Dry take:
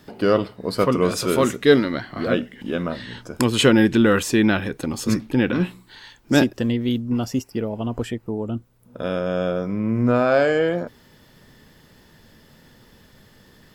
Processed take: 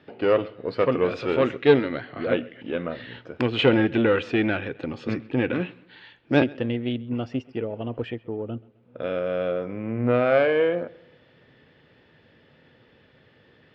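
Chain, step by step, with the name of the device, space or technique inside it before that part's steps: analogue delay pedal into a guitar amplifier (analogue delay 0.131 s, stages 4096, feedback 41%, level -23 dB; tube stage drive 5 dB, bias 0.75; speaker cabinet 100–3400 Hz, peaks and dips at 200 Hz -8 dB, 500 Hz +4 dB, 1000 Hz -5 dB, 2500 Hz +4 dB); gain +1 dB

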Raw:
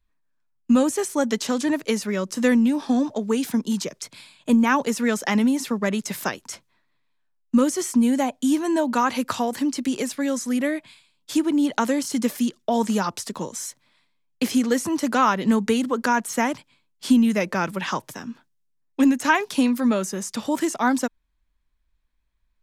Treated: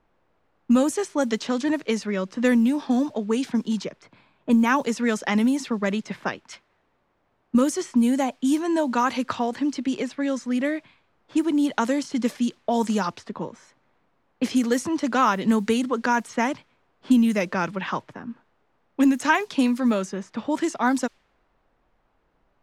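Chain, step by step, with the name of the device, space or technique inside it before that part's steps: 6.45–7.55 tilt shelf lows -8.5 dB, about 1400 Hz; cassette deck with a dynamic noise filter (white noise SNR 33 dB; low-pass opened by the level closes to 1000 Hz, open at -15.5 dBFS); gain -1 dB

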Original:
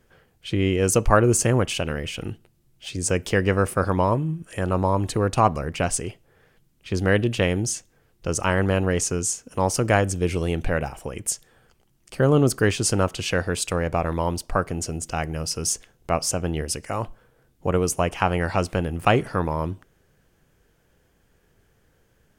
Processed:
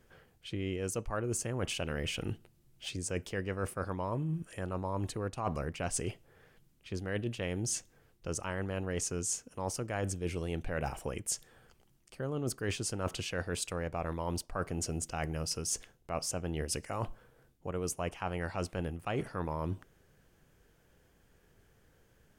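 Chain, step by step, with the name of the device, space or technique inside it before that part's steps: compression on the reversed sound (reverse; compressor 12:1, threshold -28 dBFS, peak gain reduction 18 dB; reverse); gain -3 dB

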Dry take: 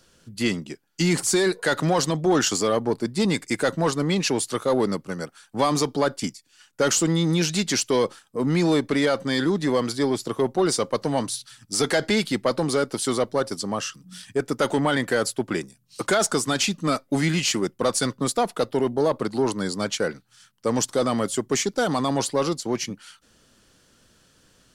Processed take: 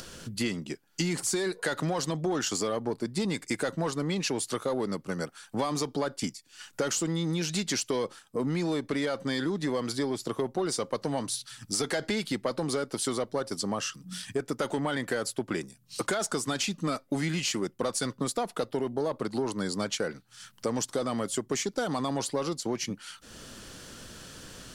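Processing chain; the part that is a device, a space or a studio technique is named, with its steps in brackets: upward and downward compression (upward compressor, threshold -33 dBFS; compressor 5:1, threshold -27 dBFS, peak gain reduction 10.5 dB)

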